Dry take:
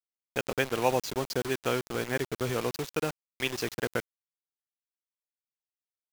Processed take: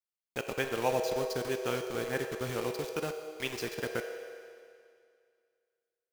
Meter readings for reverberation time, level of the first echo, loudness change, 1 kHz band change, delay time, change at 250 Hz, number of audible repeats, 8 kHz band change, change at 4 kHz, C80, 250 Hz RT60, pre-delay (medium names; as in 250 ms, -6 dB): 2.2 s, no echo, -3.0 dB, -3.5 dB, no echo, -4.5 dB, no echo, -4.0 dB, -4.0 dB, 7.0 dB, 2.2 s, 6 ms